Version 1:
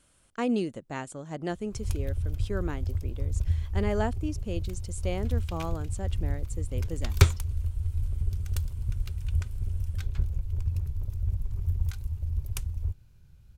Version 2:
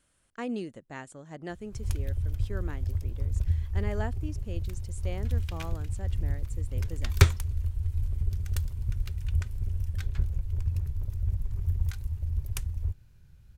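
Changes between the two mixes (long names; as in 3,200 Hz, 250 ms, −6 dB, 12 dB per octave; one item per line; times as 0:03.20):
speech −6.5 dB
master: add parametric band 1,800 Hz +5 dB 0.39 octaves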